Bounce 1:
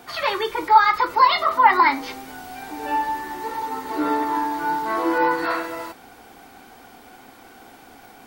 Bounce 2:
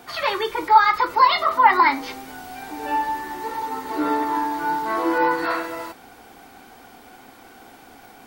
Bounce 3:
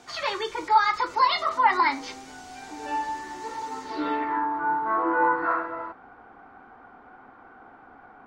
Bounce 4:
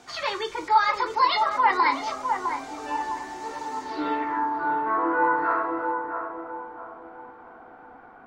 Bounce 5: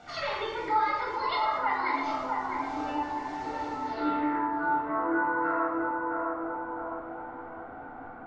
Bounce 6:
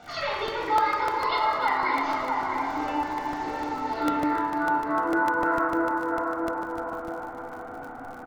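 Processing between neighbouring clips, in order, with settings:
no processing that can be heard
low-pass filter sweep 6,800 Hz → 1,300 Hz, 0:03.80–0:04.47; level −6 dB
feedback echo with a band-pass in the loop 657 ms, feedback 43%, band-pass 570 Hz, level −4 dB
downward compressor 2 to 1, threshold −35 dBFS, peak gain reduction 11.5 dB; high-frequency loss of the air 130 metres; convolution reverb RT60 0.95 s, pre-delay 21 ms, DRR −1.5 dB; level −2 dB
surface crackle 63 per second −42 dBFS; repeating echo 300 ms, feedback 57%, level −8.5 dB; regular buffer underruns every 0.15 s, samples 64, repeat, from 0:00.48; level +3 dB

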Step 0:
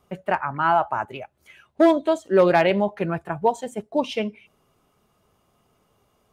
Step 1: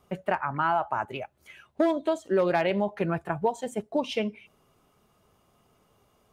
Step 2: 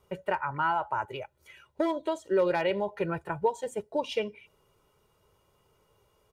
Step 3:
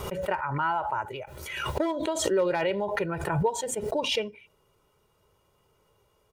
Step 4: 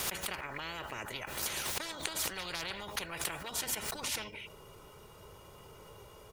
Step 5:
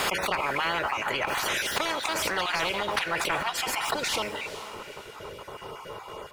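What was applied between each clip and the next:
downward compressor 2.5 to 1, threshold −24 dBFS, peak gain reduction 9 dB
comb filter 2.1 ms, depth 60%; level −3.5 dB
background raised ahead of every attack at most 42 dB per second
every bin compressed towards the loudest bin 10 to 1; level +1 dB
time-frequency cells dropped at random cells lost 22%; mid-hump overdrive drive 17 dB, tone 1,400 Hz, clips at −17.5 dBFS; feedback delay with all-pass diffusion 457 ms, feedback 42%, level −13.5 dB; level +8.5 dB

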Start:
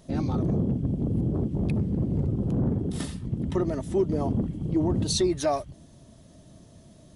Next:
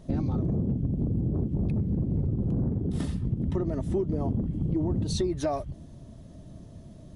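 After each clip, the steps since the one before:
spectral tilt −2 dB per octave
downward compressor, threshold −24 dBFS, peak gain reduction 9 dB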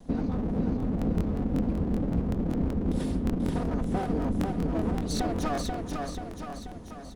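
lower of the sound and its delayed copy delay 4.1 ms
repeating echo 485 ms, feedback 54%, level −3.5 dB
regular buffer underruns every 0.19 s, samples 1,024, repeat, from 0:00.78

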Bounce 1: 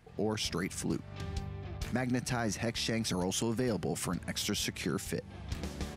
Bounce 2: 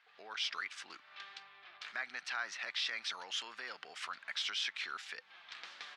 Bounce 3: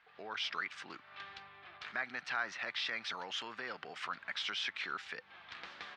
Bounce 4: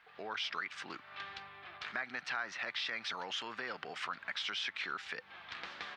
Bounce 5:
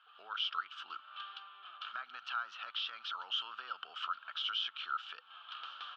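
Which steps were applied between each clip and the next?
Chebyshev band-pass filter 1,300–3,900 Hz, order 2; level +2 dB
RIAA equalisation playback; level +4 dB
downward compressor 2 to 1, threshold −41 dBFS, peak gain reduction 6.5 dB; level +3.5 dB
pair of resonant band-passes 2,000 Hz, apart 1.2 octaves; level +6.5 dB

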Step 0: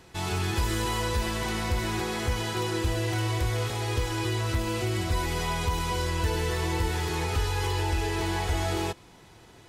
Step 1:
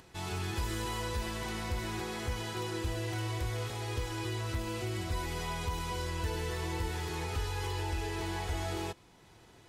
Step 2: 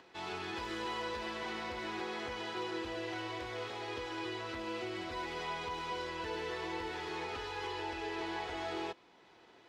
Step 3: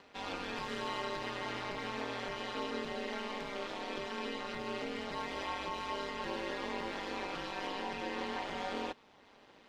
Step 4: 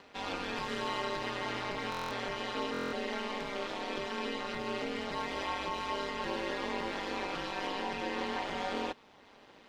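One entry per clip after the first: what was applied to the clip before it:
upward compression, threshold −45 dBFS; level −7.5 dB
three-way crossover with the lows and the highs turned down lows −20 dB, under 240 Hz, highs −23 dB, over 5,000 Hz
ring modulation 99 Hz; level +3.5 dB
buffer that repeats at 0:01.90/0:02.72, samples 1,024, times 8; level +3 dB

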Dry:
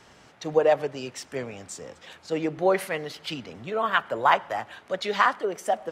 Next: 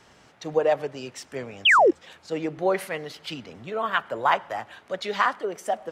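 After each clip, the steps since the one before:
sound drawn into the spectrogram fall, 0:01.65–0:01.91, 300–3,500 Hz −14 dBFS
level −1.5 dB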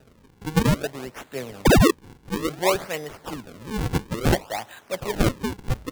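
sample-and-hold swept by an LFO 40×, swing 160% 0.58 Hz
level +1.5 dB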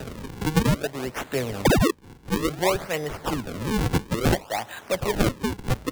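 multiband upward and downward compressor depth 70%

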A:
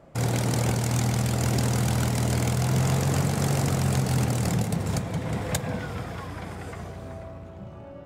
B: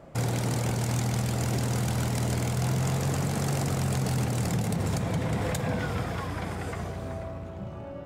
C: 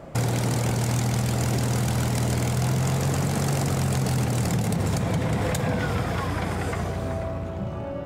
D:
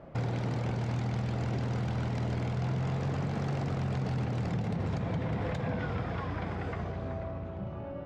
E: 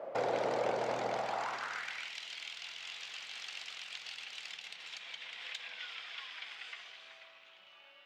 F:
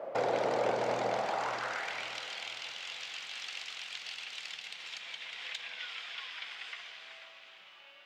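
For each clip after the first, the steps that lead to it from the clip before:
brickwall limiter −22.5 dBFS, peak gain reduction 10 dB; level +3 dB
downward compressor 2 to 1, threshold −31 dBFS, peak gain reduction 4.5 dB; level +7.5 dB
high-frequency loss of the air 210 metres; level −7.5 dB
high-pass filter sweep 540 Hz → 3,000 Hz, 0:01.09–0:02.17; level +2.5 dB
feedback delay with all-pass diffusion 471 ms, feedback 41%, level −10.5 dB; level +2.5 dB

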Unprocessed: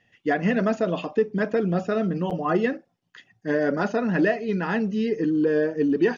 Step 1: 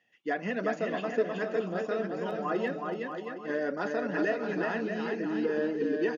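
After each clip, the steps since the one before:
Bessel high-pass filter 300 Hz, order 2
on a send: bouncing-ball delay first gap 370 ms, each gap 0.7×, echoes 5
on the sum: level −7 dB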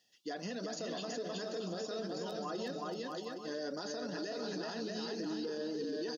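high shelf with overshoot 3,200 Hz +12.5 dB, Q 3
brickwall limiter −27.5 dBFS, peak gain reduction 11 dB
level −3.5 dB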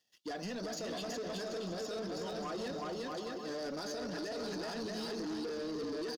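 single-tap delay 731 ms −16 dB
leveller curve on the samples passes 2
level −4 dB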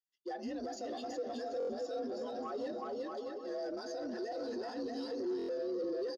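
frequency shifter +54 Hz
buffer that repeats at 0:01.58/0:05.37, samples 1,024, times 4
every bin expanded away from the loudest bin 1.5 to 1
level −1.5 dB

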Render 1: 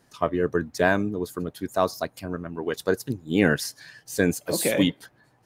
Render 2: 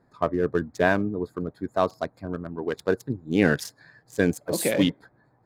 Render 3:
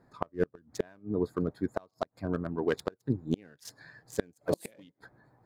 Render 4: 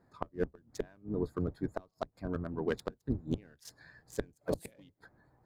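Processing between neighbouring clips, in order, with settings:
adaptive Wiener filter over 15 samples
gate with flip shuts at −14 dBFS, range −34 dB
sub-octave generator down 1 octave, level −4 dB; level −4.5 dB

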